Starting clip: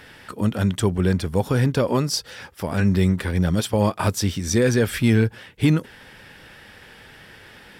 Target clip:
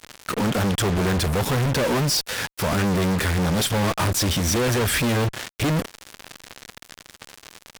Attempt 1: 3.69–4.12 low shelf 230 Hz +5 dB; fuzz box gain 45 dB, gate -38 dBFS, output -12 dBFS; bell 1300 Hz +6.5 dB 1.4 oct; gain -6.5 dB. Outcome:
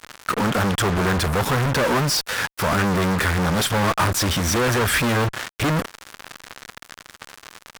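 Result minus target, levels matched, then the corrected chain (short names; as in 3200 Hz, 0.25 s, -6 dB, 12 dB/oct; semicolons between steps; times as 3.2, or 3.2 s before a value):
1000 Hz band +3.5 dB
3.69–4.12 low shelf 230 Hz +5 dB; fuzz box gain 45 dB, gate -38 dBFS, output -12 dBFS; gain -6.5 dB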